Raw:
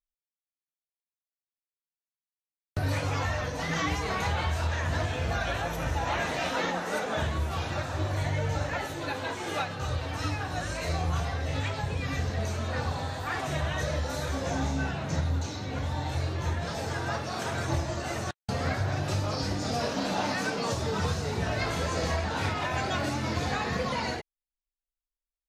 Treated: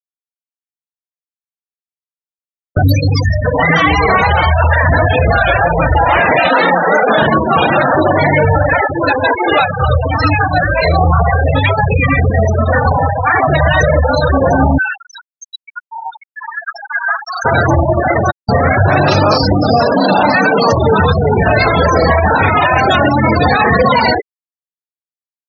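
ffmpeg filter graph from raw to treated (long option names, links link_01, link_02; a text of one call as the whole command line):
ffmpeg -i in.wav -filter_complex "[0:a]asettb=1/sr,asplit=3[link_01][link_02][link_03];[link_01]atrim=end=2.824[link_04];[link_02]atrim=start=2.82:end=3.45,asetpts=PTS-STARTPTS,afade=type=in:duration=0.004:curve=qsin,afade=type=out:start_time=0.626:duration=0.004:curve=qsin,highshelf=frequency=5300:gain=8.5,acrossover=split=410|3000[link_05][link_06][link_07];[link_06]acompressor=threshold=-53dB:ratio=2:attack=3.2:release=140:knee=2.83:detection=peak[link_08];[link_05][link_08][link_07]amix=inputs=3:normalize=0[link_09];[link_03]atrim=start=3.446[link_10];[link_04][link_09]acrossfade=duration=0.004:curve1=hsin:curve2=qsin[link_11];[link_11][link_10]acrossfade=duration=0.004:curve1=qsin:curve2=hsin,asettb=1/sr,asplit=3[link_12][link_13][link_14];[link_12]atrim=end=7.084[link_15];[link_13]atrim=start=7.08:end=8.45,asetpts=PTS-STARTPTS,afade=type=in:duration=0.004:curve=qsin,afade=type=out:start_time=1.366:duration=0.004:curve=qsin,aeval=exprs='val(0)+0.5*0.0237*sgn(val(0))':channel_layout=same,lowshelf=frequency=120:width_type=q:width=1.5:gain=-13[link_16];[link_14]atrim=start=8.446[link_17];[link_15][link_16]acrossfade=duration=0.004:curve1=hsin:curve2=qsin[link_18];[link_18][link_17]acrossfade=duration=0.004:curve1=qsin:curve2=hsin,asettb=1/sr,asplit=3[link_19][link_20][link_21];[link_19]atrim=end=14.784[link_22];[link_20]atrim=start=14.78:end=17.45,asetpts=PTS-STARTPTS,afade=type=in:duration=0.004:curve=qsin,afade=type=out:start_time=2.666:duration=0.004:curve=qsin,highpass=1200,asoftclip=type=hard:threshold=-31dB,aecho=1:1:86:0.316,atrim=end_sample=117747[link_23];[link_21]atrim=start=17.446[link_24];[link_22][link_23]acrossfade=duration=0.004:curve1=hsin:curve2=qsin[link_25];[link_25][link_24]acrossfade=duration=0.004:curve1=qsin:curve2=hsin,asettb=1/sr,asplit=3[link_26][link_27][link_28];[link_26]atrim=end=18.884[link_29];[link_27]atrim=start=18.88:end=19.38,asetpts=PTS-STARTPTS,afade=type=in:duration=0.004:curve=qsin,afade=type=out:start_time=0.496:duration=0.004:curve=qsin,acontrast=67,highpass=130,lowpass=6500[link_30];[link_28]atrim=start=19.376[link_31];[link_29][link_30]acrossfade=duration=0.004:curve1=hsin:curve2=qsin[link_32];[link_32][link_31]acrossfade=duration=0.004:curve1=qsin:curve2=hsin,lowshelf=frequency=310:gain=-6.5,afftfilt=real='re*gte(hypot(re,im),0.0398)':imag='im*gte(hypot(re,im),0.0398)':win_size=1024:overlap=0.75,alimiter=level_in=26dB:limit=-1dB:release=50:level=0:latency=1,volume=-1dB" out.wav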